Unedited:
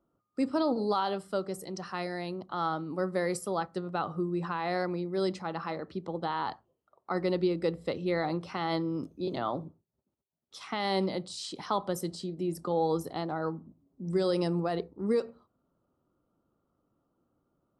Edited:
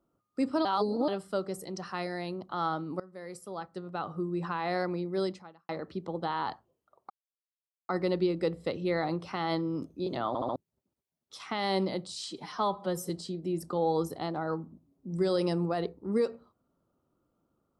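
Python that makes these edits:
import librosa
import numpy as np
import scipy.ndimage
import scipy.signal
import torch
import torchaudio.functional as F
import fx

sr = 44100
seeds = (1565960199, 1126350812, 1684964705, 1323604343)

y = fx.edit(x, sr, fx.reverse_span(start_s=0.65, length_s=0.43),
    fx.fade_in_from(start_s=3.0, length_s=1.53, floor_db=-22.5),
    fx.fade_out_span(start_s=5.2, length_s=0.49, curve='qua'),
    fx.insert_silence(at_s=7.1, length_s=0.79),
    fx.stutter_over(start_s=9.49, slice_s=0.07, count=4),
    fx.stretch_span(start_s=11.51, length_s=0.53, factor=1.5), tone=tone)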